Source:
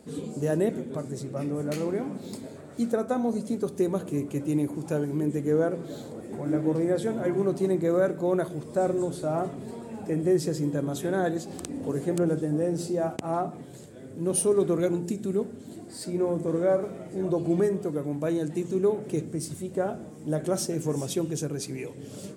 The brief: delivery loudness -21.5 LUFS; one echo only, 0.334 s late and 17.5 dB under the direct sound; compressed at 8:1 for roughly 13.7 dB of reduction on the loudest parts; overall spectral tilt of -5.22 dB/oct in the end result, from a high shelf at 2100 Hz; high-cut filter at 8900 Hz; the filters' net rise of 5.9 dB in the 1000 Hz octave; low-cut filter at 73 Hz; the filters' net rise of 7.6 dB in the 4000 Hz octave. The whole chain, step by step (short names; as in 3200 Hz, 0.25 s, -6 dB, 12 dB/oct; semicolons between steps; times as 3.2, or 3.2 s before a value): HPF 73 Hz; LPF 8900 Hz; bell 1000 Hz +8 dB; high shelf 2100 Hz +3 dB; bell 4000 Hz +6.5 dB; compressor 8:1, threshold -32 dBFS; echo 0.334 s -17.5 dB; gain +15 dB